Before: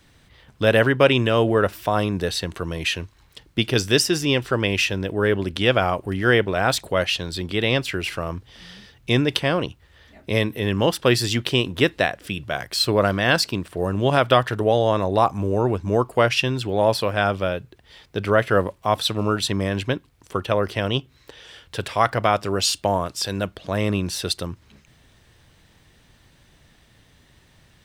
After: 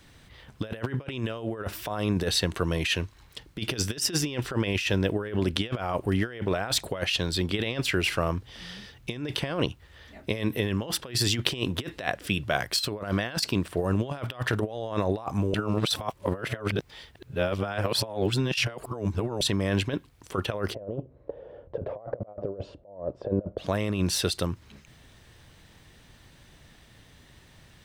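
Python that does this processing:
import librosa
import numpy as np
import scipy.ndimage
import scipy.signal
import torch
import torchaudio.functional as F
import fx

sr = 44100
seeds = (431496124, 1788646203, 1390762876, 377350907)

y = fx.lowpass_res(x, sr, hz=560.0, q=4.9, at=(20.73, 23.57), fade=0.02)
y = fx.edit(y, sr, fx.reverse_span(start_s=15.54, length_s=3.87), tone=tone)
y = fx.over_compress(y, sr, threshold_db=-24.0, ratio=-0.5)
y = F.gain(torch.from_numpy(y), -3.5).numpy()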